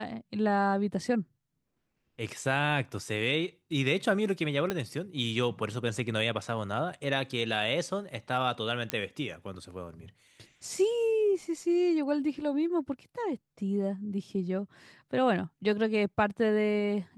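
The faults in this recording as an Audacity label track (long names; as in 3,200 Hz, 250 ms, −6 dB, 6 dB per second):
4.700000	4.700000	click −15 dBFS
8.900000	8.900000	click −13 dBFS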